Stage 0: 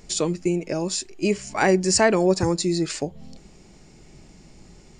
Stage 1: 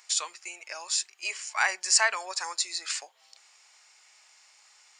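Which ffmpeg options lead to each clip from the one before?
ffmpeg -i in.wav -af "highpass=frequency=1000:width=0.5412,highpass=frequency=1000:width=1.3066" out.wav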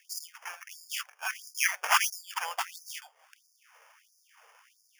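ffmpeg -i in.wav -af "acrusher=samples=11:mix=1:aa=0.000001,afftfilt=real='re*gte(b*sr/1024,390*pow(4700/390,0.5+0.5*sin(2*PI*1.5*pts/sr)))':imag='im*gte(b*sr/1024,390*pow(4700/390,0.5+0.5*sin(2*PI*1.5*pts/sr)))':win_size=1024:overlap=0.75" out.wav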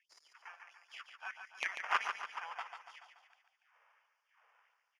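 ffmpeg -i in.wav -filter_complex "[0:a]aeval=exprs='0.316*(cos(1*acos(clip(val(0)/0.316,-1,1)))-cos(1*PI/2))+0.158*(cos(3*acos(clip(val(0)/0.316,-1,1)))-cos(3*PI/2))+0.0631*(cos(5*acos(clip(val(0)/0.316,-1,1)))-cos(5*PI/2))+0.0126*(cos(7*acos(clip(val(0)/0.316,-1,1)))-cos(7*PI/2))+0.00316*(cos(8*acos(clip(val(0)/0.316,-1,1)))-cos(8*PI/2))':channel_layout=same,highpass=660,lowpass=2400,asplit=2[link_01][link_02];[link_02]aecho=0:1:143|286|429|572|715|858:0.447|0.228|0.116|0.0593|0.0302|0.0154[link_03];[link_01][link_03]amix=inputs=2:normalize=0,volume=4dB" out.wav

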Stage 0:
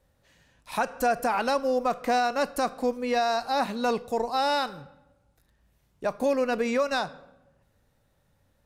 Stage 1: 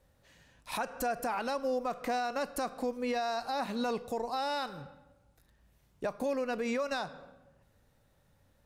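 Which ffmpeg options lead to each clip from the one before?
ffmpeg -i in.wav -af "alimiter=level_in=0.5dB:limit=-24dB:level=0:latency=1:release=221,volume=-0.5dB" out.wav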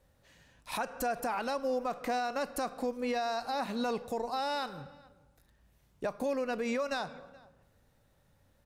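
ffmpeg -i in.wav -filter_complex "[0:a]asplit=2[link_01][link_02];[link_02]adelay=425.7,volume=-23dB,highshelf=frequency=4000:gain=-9.58[link_03];[link_01][link_03]amix=inputs=2:normalize=0" out.wav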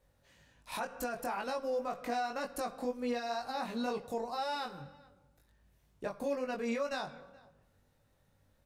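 ffmpeg -i in.wav -af "flanger=delay=19.5:depth=2.4:speed=2" out.wav

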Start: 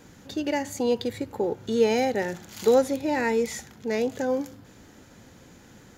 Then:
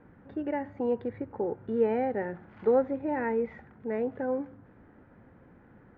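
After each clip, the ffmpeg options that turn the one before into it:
ffmpeg -i in.wav -af "lowpass=frequency=1800:width=0.5412,lowpass=frequency=1800:width=1.3066,volume=-4.5dB" out.wav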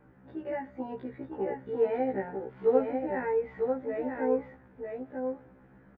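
ffmpeg -i in.wav -af "aecho=1:1:947:0.596,afftfilt=real='re*1.73*eq(mod(b,3),0)':imag='im*1.73*eq(mod(b,3),0)':win_size=2048:overlap=0.75" out.wav

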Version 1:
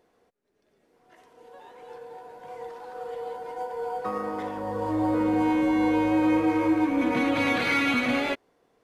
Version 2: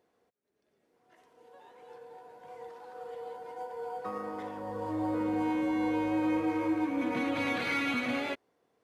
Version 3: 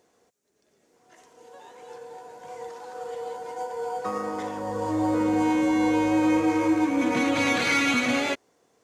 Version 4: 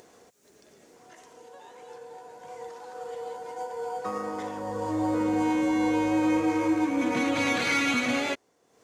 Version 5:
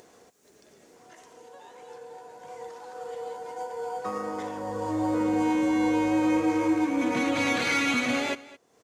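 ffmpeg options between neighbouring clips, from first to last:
ffmpeg -i in.wav -af "highpass=64,volume=-7dB" out.wav
ffmpeg -i in.wav -af "equalizer=frequency=6800:width_type=o:width=0.89:gain=12.5,volume=7.5dB" out.wav
ffmpeg -i in.wav -af "acompressor=mode=upward:threshold=-41dB:ratio=2.5,volume=-2.5dB" out.wav
ffmpeg -i in.wav -af "aecho=1:1:215:0.112" out.wav

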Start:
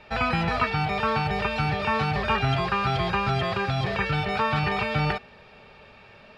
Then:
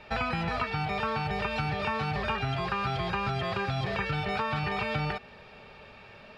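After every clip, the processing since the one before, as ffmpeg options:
ffmpeg -i in.wav -af "acompressor=threshold=-27dB:ratio=6" out.wav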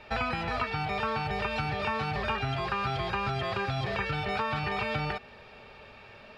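ffmpeg -i in.wav -af "equalizer=frequency=170:width_type=o:width=0.28:gain=-7.5" out.wav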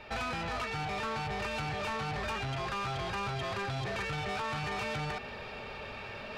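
ffmpeg -i in.wav -af "areverse,acompressor=mode=upward:threshold=-34dB:ratio=2.5,areverse,asoftclip=type=tanh:threshold=-33dB,volume=1dB" out.wav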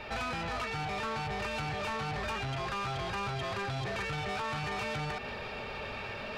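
ffmpeg -i in.wav -af "alimiter=level_in=14dB:limit=-24dB:level=0:latency=1:release=148,volume=-14dB,volume=6dB" out.wav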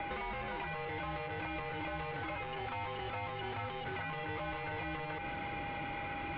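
ffmpeg -i in.wav -filter_complex "[0:a]aeval=exprs='val(0)+0.0112*sin(2*PI*1100*n/s)':channel_layout=same,acrossover=split=420|2100[link_01][link_02][link_03];[link_01]acompressor=threshold=-47dB:ratio=4[link_04];[link_02]acompressor=threshold=-45dB:ratio=4[link_05];[link_03]acompressor=threshold=-48dB:ratio=4[link_06];[link_04][link_05][link_06]amix=inputs=3:normalize=0,highpass=frequency=180:width_type=q:width=0.5412,highpass=frequency=180:width_type=q:width=1.307,lowpass=frequency=3400:width_type=q:width=0.5176,lowpass=frequency=3400:width_type=q:width=0.7071,lowpass=frequency=3400:width_type=q:width=1.932,afreqshift=-290,volume=3.5dB" out.wav

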